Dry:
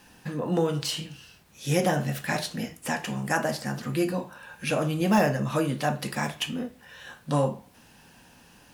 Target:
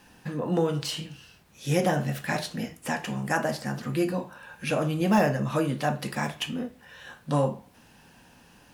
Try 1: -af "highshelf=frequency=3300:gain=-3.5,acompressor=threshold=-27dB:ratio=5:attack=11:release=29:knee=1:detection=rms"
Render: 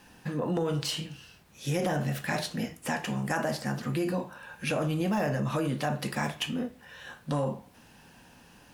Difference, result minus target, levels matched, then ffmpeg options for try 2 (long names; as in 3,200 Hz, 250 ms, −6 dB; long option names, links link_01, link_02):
downward compressor: peak gain reduction +8.5 dB
-af "highshelf=frequency=3300:gain=-3.5"